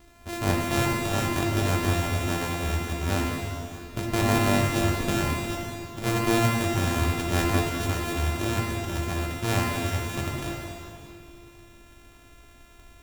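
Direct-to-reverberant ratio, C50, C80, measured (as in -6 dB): -1.5 dB, 0.5 dB, 2.0 dB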